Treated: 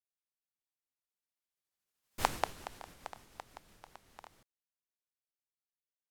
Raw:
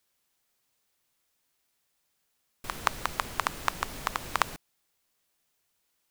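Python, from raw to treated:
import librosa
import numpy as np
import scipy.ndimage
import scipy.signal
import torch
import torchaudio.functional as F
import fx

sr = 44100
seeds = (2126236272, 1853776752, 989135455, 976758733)

y = fx.pitch_glide(x, sr, semitones=-6.5, runs='ending unshifted')
y = fx.doppler_pass(y, sr, speed_mps=59, closest_m=3.4, pass_at_s=2.23)
y = y * 10.0 ** (5.5 / 20.0)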